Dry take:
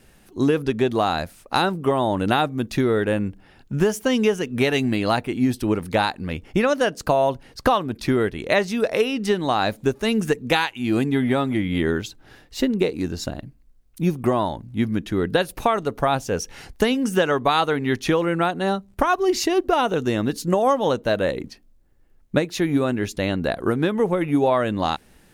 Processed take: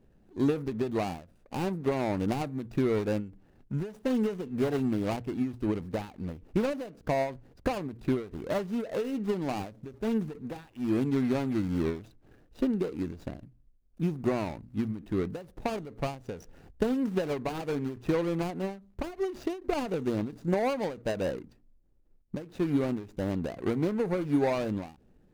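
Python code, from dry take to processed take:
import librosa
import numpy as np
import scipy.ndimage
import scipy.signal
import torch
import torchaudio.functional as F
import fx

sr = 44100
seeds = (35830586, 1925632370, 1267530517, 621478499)

y = scipy.ndimage.median_filter(x, 41, mode='constant')
y = fx.hum_notches(y, sr, base_hz=60, count=2)
y = fx.end_taper(y, sr, db_per_s=140.0)
y = F.gain(torch.from_numpy(y), -5.5).numpy()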